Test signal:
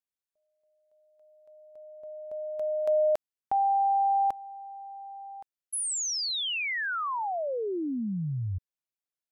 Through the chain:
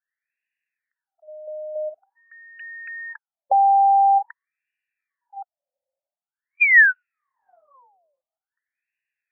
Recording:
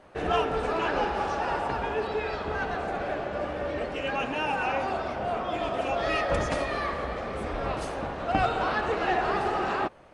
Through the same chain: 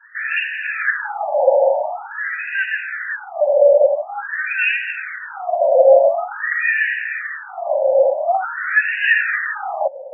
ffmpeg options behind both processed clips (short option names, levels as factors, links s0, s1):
-filter_complex "[0:a]asplit=3[s0][s1][s2];[s0]bandpass=f=530:t=q:w=8,volume=1[s3];[s1]bandpass=f=1840:t=q:w=8,volume=0.501[s4];[s2]bandpass=f=2480:t=q:w=8,volume=0.355[s5];[s3][s4][s5]amix=inputs=3:normalize=0,apsyclip=25.1,asplit=2[s6][s7];[s7]asoftclip=type=tanh:threshold=0.168,volume=0.596[s8];[s6][s8]amix=inputs=2:normalize=0,afftfilt=real='re*between(b*sr/1024,690*pow(2100/690,0.5+0.5*sin(2*PI*0.47*pts/sr))/1.41,690*pow(2100/690,0.5+0.5*sin(2*PI*0.47*pts/sr))*1.41)':imag='im*between(b*sr/1024,690*pow(2100/690,0.5+0.5*sin(2*PI*0.47*pts/sr))/1.41,690*pow(2100/690,0.5+0.5*sin(2*PI*0.47*pts/sr))*1.41)':win_size=1024:overlap=0.75,volume=0.794"